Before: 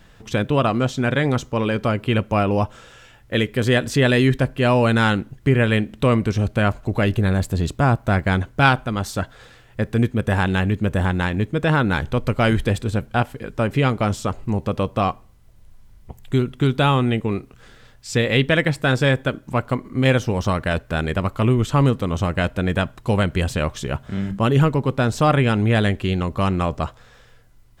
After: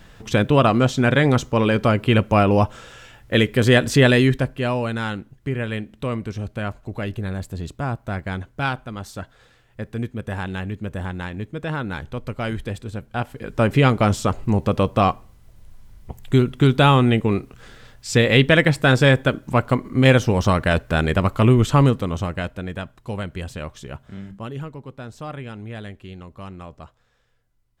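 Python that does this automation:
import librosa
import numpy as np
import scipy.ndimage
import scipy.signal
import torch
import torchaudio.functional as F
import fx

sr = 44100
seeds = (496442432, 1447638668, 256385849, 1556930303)

y = fx.gain(x, sr, db=fx.line((4.02, 3.0), (4.93, -8.5), (13.04, -8.5), (13.63, 3.0), (21.7, 3.0), (22.72, -9.5), (24.11, -9.5), (24.65, -16.5)))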